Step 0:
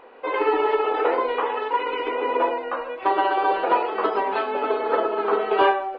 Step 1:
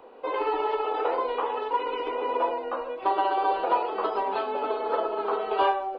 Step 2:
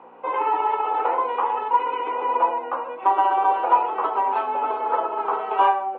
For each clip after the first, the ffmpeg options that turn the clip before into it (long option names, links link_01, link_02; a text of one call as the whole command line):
ffmpeg -i in.wav -filter_complex "[0:a]equalizer=frequency=1900:width_type=o:width=1.2:gain=-10.5,acrossover=split=100|570|1000[link_01][link_02][link_03][link_04];[link_02]acompressor=threshold=-34dB:ratio=6[link_05];[link_01][link_05][link_03][link_04]amix=inputs=4:normalize=0" out.wav
ffmpeg -i in.wav -af "aeval=exprs='val(0)+0.00398*(sin(2*PI*60*n/s)+sin(2*PI*2*60*n/s)/2+sin(2*PI*3*60*n/s)/3+sin(2*PI*4*60*n/s)/4+sin(2*PI*5*60*n/s)/5)':channel_layout=same,highpass=frequency=270:width=0.5412,highpass=frequency=270:width=1.3066,equalizer=frequency=300:width_type=q:width=4:gain=-5,equalizer=frequency=430:width_type=q:width=4:gain=-8,equalizer=frequency=620:width_type=q:width=4:gain=-6,equalizer=frequency=900:width_type=q:width=4:gain=5,equalizer=frequency=1700:width_type=q:width=4:gain=-3,lowpass=frequency=2500:width=0.5412,lowpass=frequency=2500:width=1.3066,volume=5dB" out.wav